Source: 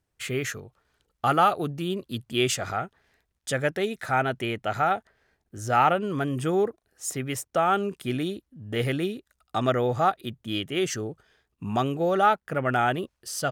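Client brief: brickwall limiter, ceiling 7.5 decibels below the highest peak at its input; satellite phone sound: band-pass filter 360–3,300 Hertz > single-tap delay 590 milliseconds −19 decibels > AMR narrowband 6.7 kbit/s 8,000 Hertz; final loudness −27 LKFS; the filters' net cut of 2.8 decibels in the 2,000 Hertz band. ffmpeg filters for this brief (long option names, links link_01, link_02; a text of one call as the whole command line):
ffmpeg -i in.wav -af "equalizer=frequency=2000:width_type=o:gain=-3.5,alimiter=limit=-17dB:level=0:latency=1,highpass=360,lowpass=3300,aecho=1:1:590:0.112,volume=5dB" -ar 8000 -c:a libopencore_amrnb -b:a 6700 out.amr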